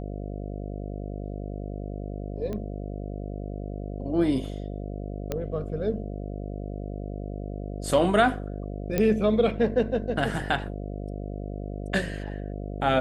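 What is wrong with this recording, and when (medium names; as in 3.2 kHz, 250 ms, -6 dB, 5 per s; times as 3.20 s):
buzz 50 Hz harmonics 14 -34 dBFS
2.53 s: pop -22 dBFS
5.32 s: pop -15 dBFS
8.98 s: pop -11 dBFS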